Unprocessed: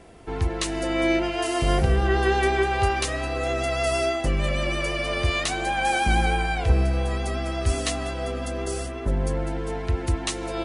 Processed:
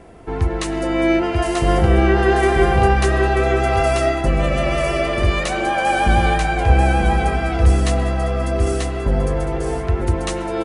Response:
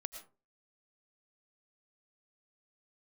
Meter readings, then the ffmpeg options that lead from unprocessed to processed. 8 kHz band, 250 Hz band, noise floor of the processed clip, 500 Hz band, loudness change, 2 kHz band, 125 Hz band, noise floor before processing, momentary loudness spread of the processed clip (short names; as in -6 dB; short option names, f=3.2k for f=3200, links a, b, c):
+1.0 dB, +7.5 dB, -24 dBFS, +7.0 dB, +6.5 dB, +5.0 dB, +7.5 dB, -32 dBFS, 7 LU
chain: -filter_complex "[0:a]aecho=1:1:938:0.668,asplit=2[a][b];[1:a]atrim=start_sample=2205,lowpass=2.4k[c];[b][c]afir=irnorm=-1:irlink=0,volume=2.5dB[d];[a][d]amix=inputs=2:normalize=0"